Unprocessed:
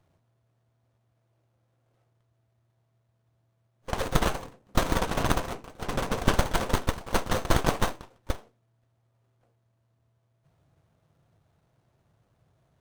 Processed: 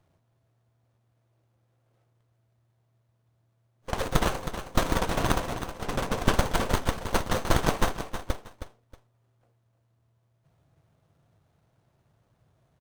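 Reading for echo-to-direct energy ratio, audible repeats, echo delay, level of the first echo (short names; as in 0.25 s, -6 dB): -9.5 dB, 2, 0.317 s, -10.0 dB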